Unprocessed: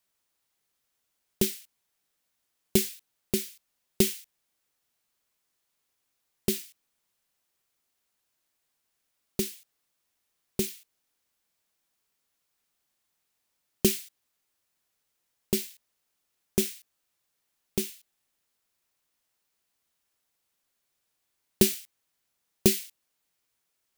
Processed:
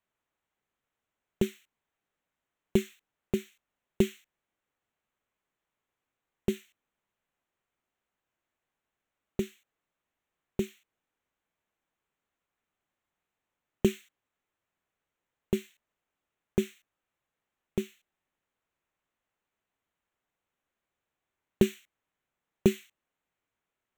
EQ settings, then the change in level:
moving average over 9 samples
0.0 dB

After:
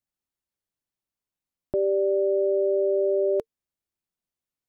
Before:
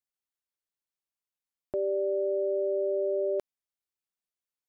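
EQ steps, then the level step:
low-shelf EQ 500 Hz +11 dB
notch filter 450 Hz, Q 13
0.0 dB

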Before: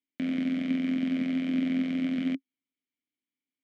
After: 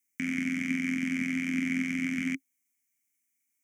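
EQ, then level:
drawn EQ curve 120 Hz 0 dB, 330 Hz −9 dB, 520 Hz −22 dB, 2,200 Hz +8 dB, 4,000 Hz −15 dB, 6,000 Hz +15 dB
+3.5 dB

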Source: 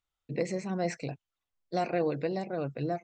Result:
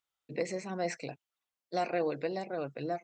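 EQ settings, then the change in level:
high-pass filter 380 Hz 6 dB per octave
0.0 dB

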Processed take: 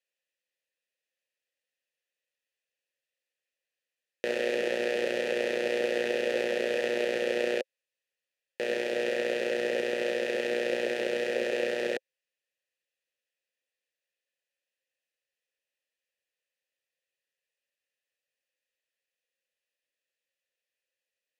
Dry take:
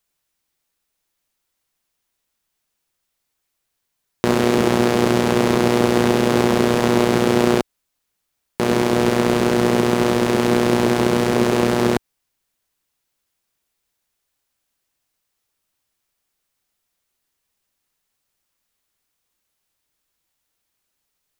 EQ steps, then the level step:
formant filter e
spectral tilt +1.5 dB per octave
high-shelf EQ 3,400 Hz +8.5 dB
0.0 dB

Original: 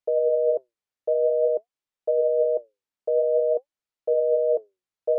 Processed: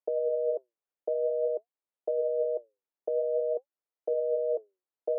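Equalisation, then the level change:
high-pass filter 290 Hz
dynamic equaliser 590 Hz, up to −7 dB, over −35 dBFS, Q 0.85
resonant band-pass 460 Hz, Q 0.66
0.0 dB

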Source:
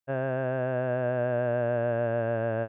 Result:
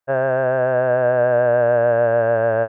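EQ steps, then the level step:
low-shelf EQ 91 Hz +5.5 dB
flat-topped bell 880 Hz +10 dB 2.4 octaves
+2.0 dB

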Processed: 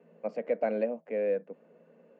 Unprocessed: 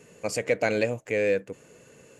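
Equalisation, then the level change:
Chebyshev high-pass with heavy ripple 160 Hz, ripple 9 dB
low-pass filter 1,300 Hz 6 dB per octave
high-frequency loss of the air 220 metres
0.0 dB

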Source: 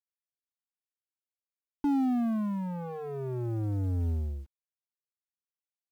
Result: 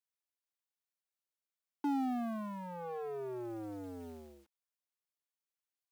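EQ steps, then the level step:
high-pass filter 370 Hz 12 dB per octave
−1.0 dB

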